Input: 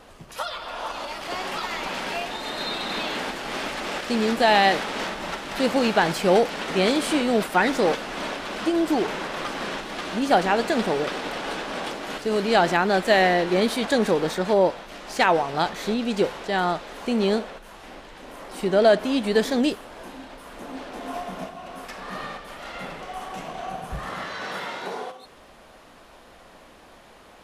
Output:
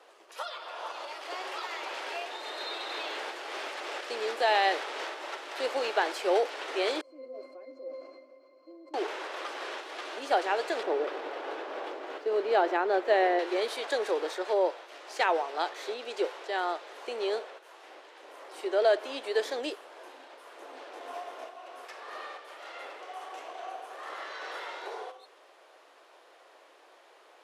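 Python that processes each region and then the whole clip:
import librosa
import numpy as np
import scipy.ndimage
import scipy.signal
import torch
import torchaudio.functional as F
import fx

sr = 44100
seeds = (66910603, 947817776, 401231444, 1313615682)

y = fx.chain(x, sr, fx.band_shelf(hz=1800.0, db=-11.0, octaves=2.5),
    fx.octave_resonator(note='C', decay_s=0.24),
    fx.sustainer(db_per_s=31.0), at=(7.01, 8.94))
y = fx.chain(y, sr, fx.median_filter(points=5),
    fx.tilt_eq(slope=-3.0), at=(10.83, 13.39))
y = scipy.signal.sosfilt(scipy.signal.butter(8, 340.0, 'highpass', fs=sr, output='sos'), y)
y = fx.high_shelf(y, sr, hz=11000.0, db=-10.5)
y = y * 10.0 ** (-7.0 / 20.0)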